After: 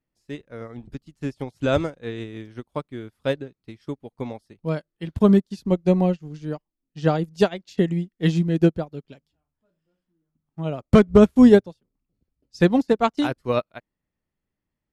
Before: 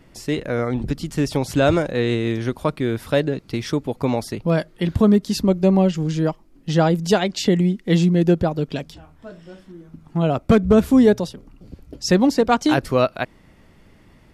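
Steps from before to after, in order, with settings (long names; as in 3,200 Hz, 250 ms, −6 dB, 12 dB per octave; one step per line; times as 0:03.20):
speed change −4%
expander for the loud parts 2.5 to 1, over −34 dBFS
level +2.5 dB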